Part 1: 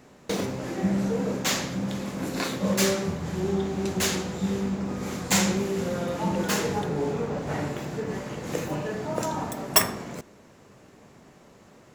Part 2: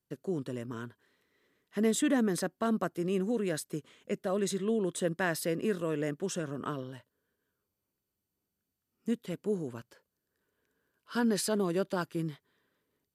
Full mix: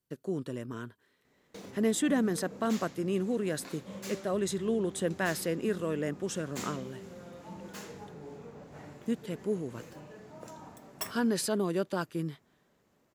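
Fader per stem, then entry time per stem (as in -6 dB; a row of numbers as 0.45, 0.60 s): -18.5, 0.0 dB; 1.25, 0.00 s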